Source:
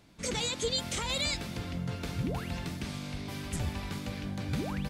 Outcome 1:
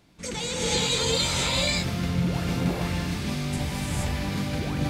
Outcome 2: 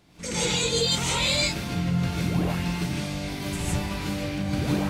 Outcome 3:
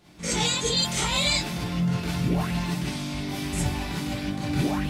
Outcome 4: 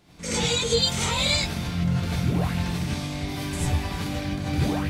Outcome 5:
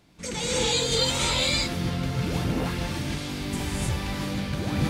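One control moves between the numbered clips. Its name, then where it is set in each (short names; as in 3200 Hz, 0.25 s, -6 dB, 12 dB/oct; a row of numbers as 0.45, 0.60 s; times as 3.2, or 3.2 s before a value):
non-linear reverb, gate: 500, 190, 80, 120, 340 ms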